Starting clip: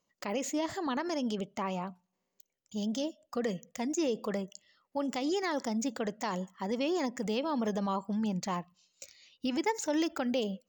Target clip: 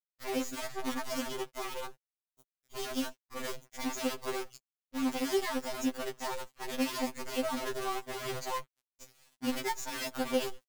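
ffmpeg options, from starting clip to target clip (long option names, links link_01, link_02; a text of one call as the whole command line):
ffmpeg -i in.wav -af "afreqshift=-13,acrusher=bits=6:dc=4:mix=0:aa=0.000001,afftfilt=real='re*2.45*eq(mod(b,6),0)':imag='im*2.45*eq(mod(b,6),0)':win_size=2048:overlap=0.75" out.wav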